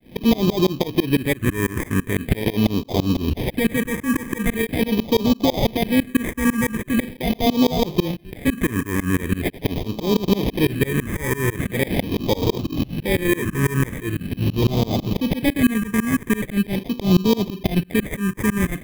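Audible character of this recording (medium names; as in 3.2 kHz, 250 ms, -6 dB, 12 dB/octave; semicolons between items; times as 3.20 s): tremolo saw up 6 Hz, depth 100%; aliases and images of a low sample rate 1.4 kHz, jitter 0%; phasing stages 4, 0.42 Hz, lowest notch 700–1700 Hz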